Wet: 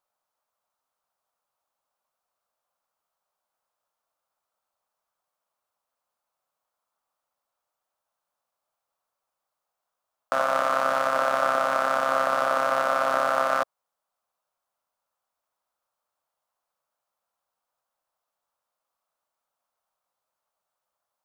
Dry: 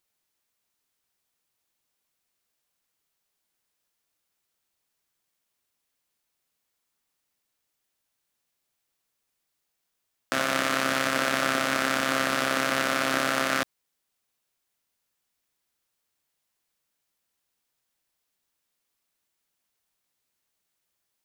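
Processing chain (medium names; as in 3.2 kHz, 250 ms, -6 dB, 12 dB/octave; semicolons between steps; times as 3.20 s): high-order bell 850 Hz +15.5 dB; trim -9 dB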